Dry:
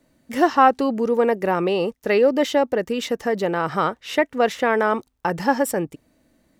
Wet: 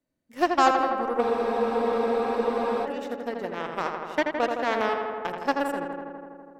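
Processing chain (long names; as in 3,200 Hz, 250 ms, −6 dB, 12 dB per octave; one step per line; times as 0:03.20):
harmonic generator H 3 −35 dB, 7 −19 dB, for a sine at −3 dBFS
feedback echo with a low-pass in the loop 82 ms, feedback 81%, low-pass 3,300 Hz, level −5 dB
frozen spectrum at 0:01.23, 1.61 s
level −5.5 dB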